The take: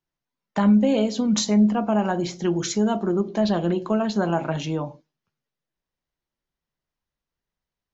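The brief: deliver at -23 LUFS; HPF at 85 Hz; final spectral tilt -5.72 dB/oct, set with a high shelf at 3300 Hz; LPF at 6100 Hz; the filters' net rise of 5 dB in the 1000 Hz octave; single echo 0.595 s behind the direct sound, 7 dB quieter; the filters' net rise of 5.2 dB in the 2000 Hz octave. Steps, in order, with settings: HPF 85 Hz; LPF 6100 Hz; bell 1000 Hz +6 dB; bell 2000 Hz +6 dB; high shelf 3300 Hz -5 dB; echo 0.595 s -7 dB; gain -2 dB

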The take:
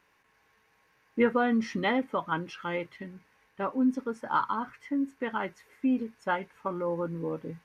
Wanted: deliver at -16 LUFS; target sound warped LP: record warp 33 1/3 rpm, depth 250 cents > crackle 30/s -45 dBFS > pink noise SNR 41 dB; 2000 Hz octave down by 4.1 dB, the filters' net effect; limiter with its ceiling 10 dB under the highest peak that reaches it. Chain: bell 2000 Hz -5.5 dB; limiter -23.5 dBFS; record warp 33 1/3 rpm, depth 250 cents; crackle 30/s -45 dBFS; pink noise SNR 41 dB; gain +18.5 dB

